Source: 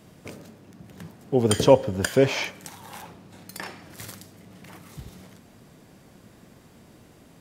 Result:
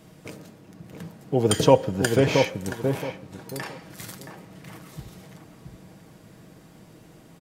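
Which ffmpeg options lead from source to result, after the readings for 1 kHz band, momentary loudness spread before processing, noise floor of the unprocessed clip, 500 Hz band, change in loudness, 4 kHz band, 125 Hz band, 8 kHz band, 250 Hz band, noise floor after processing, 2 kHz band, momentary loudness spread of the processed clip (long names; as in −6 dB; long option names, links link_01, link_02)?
+2.5 dB, 23 LU, −53 dBFS, 0.0 dB, −1.0 dB, +1.0 dB, +2.5 dB, +0.5 dB, +1.0 dB, −51 dBFS, +0.5 dB, 23 LU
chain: -filter_complex "[0:a]aecho=1:1:6.3:0.37,asplit=2[link_01][link_02];[link_02]adelay=674,lowpass=frequency=920:poles=1,volume=-4dB,asplit=2[link_03][link_04];[link_04]adelay=674,lowpass=frequency=920:poles=1,volume=0.27,asplit=2[link_05][link_06];[link_06]adelay=674,lowpass=frequency=920:poles=1,volume=0.27,asplit=2[link_07][link_08];[link_08]adelay=674,lowpass=frequency=920:poles=1,volume=0.27[link_09];[link_03][link_05][link_07][link_09]amix=inputs=4:normalize=0[link_10];[link_01][link_10]amix=inputs=2:normalize=0"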